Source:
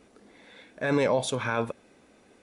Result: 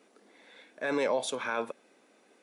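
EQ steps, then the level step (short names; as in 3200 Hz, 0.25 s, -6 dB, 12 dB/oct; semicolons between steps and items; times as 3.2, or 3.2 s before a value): Bessel high-pass 310 Hz, order 4; -3.0 dB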